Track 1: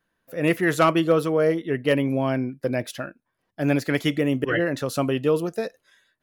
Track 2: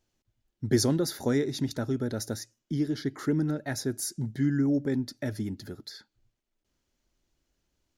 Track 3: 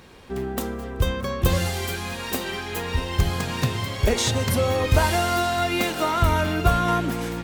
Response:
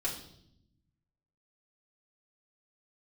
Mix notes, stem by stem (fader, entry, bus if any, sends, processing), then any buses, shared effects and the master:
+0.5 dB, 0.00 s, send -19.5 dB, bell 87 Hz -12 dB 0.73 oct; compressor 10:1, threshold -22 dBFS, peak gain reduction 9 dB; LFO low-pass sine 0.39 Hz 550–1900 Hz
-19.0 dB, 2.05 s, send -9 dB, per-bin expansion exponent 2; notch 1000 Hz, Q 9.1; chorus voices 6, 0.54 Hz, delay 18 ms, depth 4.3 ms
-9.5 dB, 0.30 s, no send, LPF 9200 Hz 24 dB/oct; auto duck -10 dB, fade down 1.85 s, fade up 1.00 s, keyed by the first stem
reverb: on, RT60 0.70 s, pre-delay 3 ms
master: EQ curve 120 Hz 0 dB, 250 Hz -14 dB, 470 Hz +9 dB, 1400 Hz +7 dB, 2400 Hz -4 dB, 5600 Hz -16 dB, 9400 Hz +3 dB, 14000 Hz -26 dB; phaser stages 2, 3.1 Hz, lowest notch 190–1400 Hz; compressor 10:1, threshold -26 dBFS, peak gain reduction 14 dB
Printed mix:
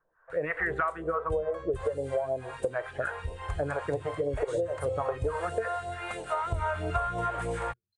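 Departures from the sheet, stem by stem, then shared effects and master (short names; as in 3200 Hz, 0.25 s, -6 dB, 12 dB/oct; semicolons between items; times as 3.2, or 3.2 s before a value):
stem 2 -19.0 dB -> -28.5 dB; stem 3 -9.5 dB -> -1.5 dB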